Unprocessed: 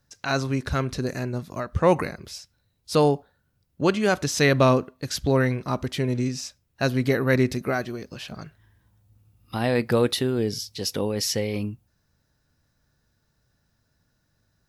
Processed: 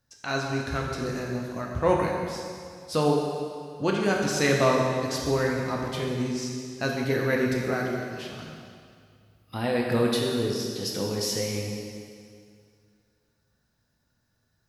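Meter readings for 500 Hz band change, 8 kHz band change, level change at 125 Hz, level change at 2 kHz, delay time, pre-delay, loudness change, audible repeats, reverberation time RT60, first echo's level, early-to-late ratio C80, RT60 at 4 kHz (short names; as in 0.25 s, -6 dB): -2.0 dB, -2.0 dB, -4.5 dB, -1.5 dB, none, 4 ms, -3.0 dB, none, 2.2 s, none, 2.5 dB, 2.1 s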